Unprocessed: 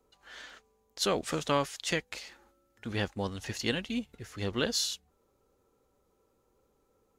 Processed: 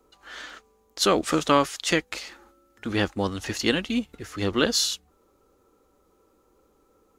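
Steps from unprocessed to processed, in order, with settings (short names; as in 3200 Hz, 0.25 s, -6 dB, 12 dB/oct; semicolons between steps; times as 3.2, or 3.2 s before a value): thirty-one-band EQ 125 Hz -9 dB, 315 Hz +6 dB, 1250 Hz +5 dB; gain +7 dB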